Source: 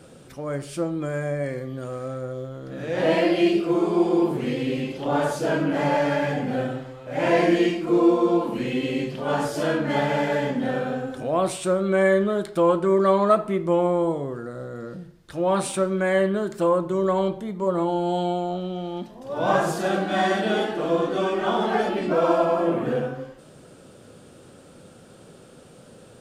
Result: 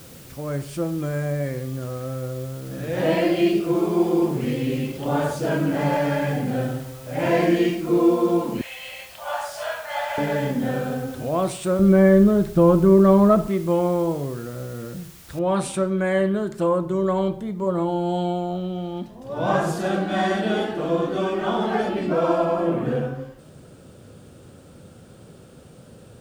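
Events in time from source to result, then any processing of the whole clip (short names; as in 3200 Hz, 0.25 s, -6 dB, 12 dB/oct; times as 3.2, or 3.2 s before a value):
8.61–10.18 steep high-pass 590 Hz 72 dB/oct
11.79–13.48 RIAA curve playback
15.39 noise floor step -46 dB -67 dB
whole clip: bell 71 Hz +10.5 dB 2.5 oct; gain -1.5 dB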